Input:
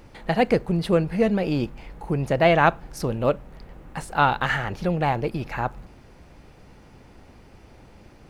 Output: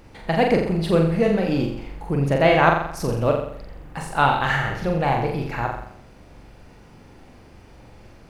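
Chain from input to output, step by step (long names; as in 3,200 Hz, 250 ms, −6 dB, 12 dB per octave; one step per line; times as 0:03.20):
flutter between parallel walls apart 7.4 metres, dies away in 0.66 s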